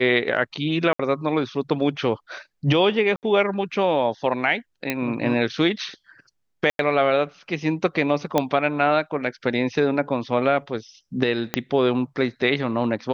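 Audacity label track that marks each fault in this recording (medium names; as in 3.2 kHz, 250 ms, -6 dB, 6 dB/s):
0.930000	0.990000	dropout 64 ms
3.160000	3.230000	dropout 68 ms
4.900000	4.900000	pop -8 dBFS
6.700000	6.790000	dropout 92 ms
8.380000	8.380000	pop -6 dBFS
11.540000	11.540000	pop -6 dBFS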